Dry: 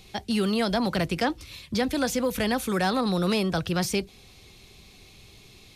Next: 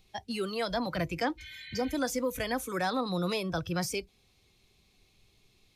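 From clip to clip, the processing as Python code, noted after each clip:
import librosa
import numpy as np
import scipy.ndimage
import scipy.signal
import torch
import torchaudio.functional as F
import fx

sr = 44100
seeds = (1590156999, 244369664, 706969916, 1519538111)

y = fx.spec_repair(x, sr, seeds[0], start_s=1.41, length_s=0.48, low_hz=1500.0, high_hz=4400.0, source='after')
y = fx.noise_reduce_blind(y, sr, reduce_db=11)
y = y * librosa.db_to_amplitude(-4.5)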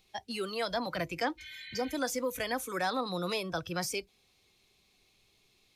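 y = fx.low_shelf(x, sr, hz=210.0, db=-10.5)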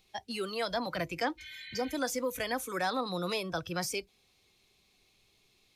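y = x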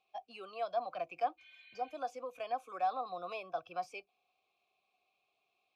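y = fx.vowel_filter(x, sr, vowel='a')
y = y * librosa.db_to_amplitude(3.5)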